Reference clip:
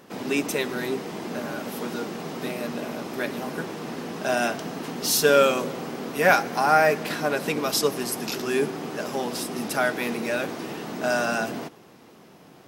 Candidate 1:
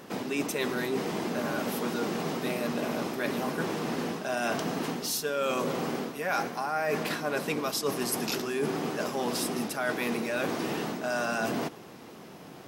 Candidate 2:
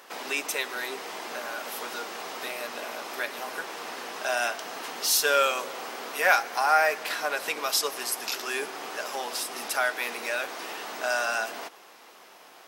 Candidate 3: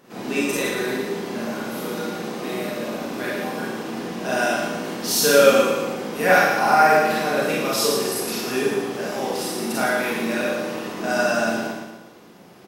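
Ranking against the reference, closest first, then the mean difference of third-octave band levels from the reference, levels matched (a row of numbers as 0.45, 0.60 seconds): 3, 1, 2; 3.5, 5.0, 8.5 decibels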